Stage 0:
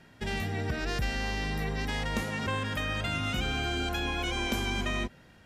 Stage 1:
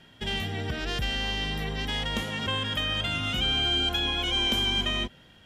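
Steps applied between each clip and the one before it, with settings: peaking EQ 3.2 kHz +14 dB 0.26 oct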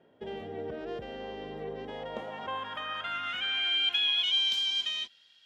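band-pass sweep 480 Hz -> 4.4 kHz, 1.85–4.55 s; trim +3.5 dB

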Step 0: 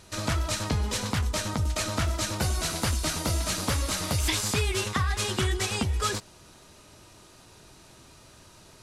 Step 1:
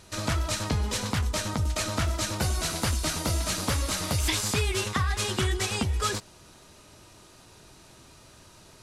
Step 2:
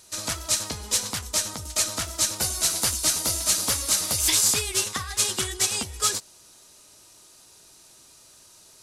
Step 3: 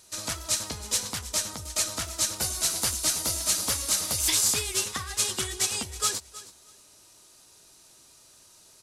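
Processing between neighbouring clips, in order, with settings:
no audible change
tone controls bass -7 dB, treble +13 dB; upward expansion 1.5:1, over -30 dBFS
feedback delay 319 ms, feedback 18%, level -17 dB; trim -3 dB

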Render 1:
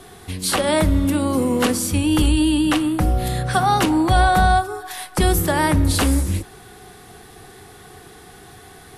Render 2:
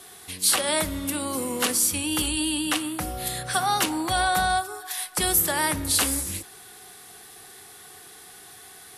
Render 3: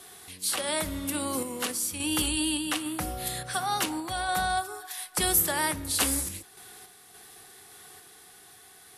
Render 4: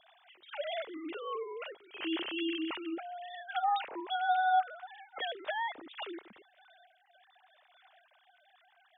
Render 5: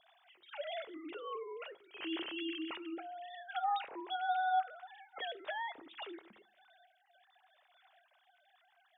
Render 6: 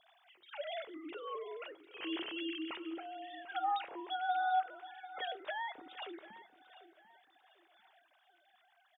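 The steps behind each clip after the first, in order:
tilt EQ +3 dB/octave; trim -6 dB
random-step tremolo; trim -1.5 dB
formants replaced by sine waves; trim -6 dB
reverberation RT60 0.45 s, pre-delay 3 ms, DRR 15.5 dB; trim -4.5 dB
feedback delay 744 ms, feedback 32%, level -16 dB

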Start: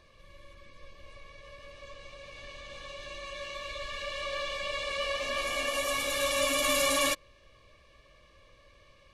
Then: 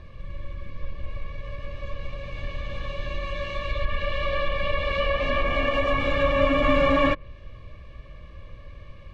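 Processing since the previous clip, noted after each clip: tone controls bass +13 dB, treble -14 dB; low-pass that closes with the level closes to 2.2 kHz, closed at -25.5 dBFS; trim +8 dB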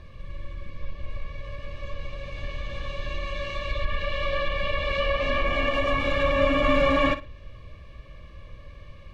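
treble shelf 4.3 kHz +6 dB; flutter echo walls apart 9.6 m, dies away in 0.26 s; trim -1.5 dB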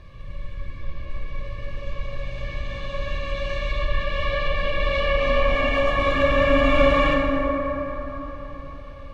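plate-style reverb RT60 4.7 s, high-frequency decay 0.35×, DRR -1 dB

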